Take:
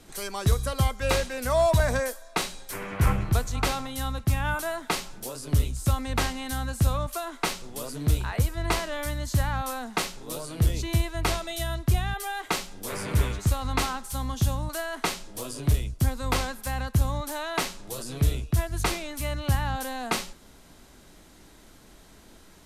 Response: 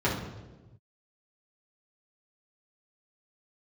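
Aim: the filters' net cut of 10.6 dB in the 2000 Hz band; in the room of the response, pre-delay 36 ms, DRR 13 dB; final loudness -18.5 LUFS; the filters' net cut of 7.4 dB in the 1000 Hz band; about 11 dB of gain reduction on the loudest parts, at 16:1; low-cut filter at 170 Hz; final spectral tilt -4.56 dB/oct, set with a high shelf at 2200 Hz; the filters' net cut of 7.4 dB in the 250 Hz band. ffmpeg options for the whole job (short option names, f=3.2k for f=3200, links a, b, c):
-filter_complex "[0:a]highpass=170,equalizer=f=250:t=o:g=-8,equalizer=f=1k:t=o:g=-6,equalizer=f=2k:t=o:g=-8,highshelf=f=2.2k:g=-7,acompressor=threshold=-36dB:ratio=16,asplit=2[a][b];[1:a]atrim=start_sample=2205,adelay=36[c];[b][c]afir=irnorm=-1:irlink=0,volume=-26dB[d];[a][d]amix=inputs=2:normalize=0,volume=23dB"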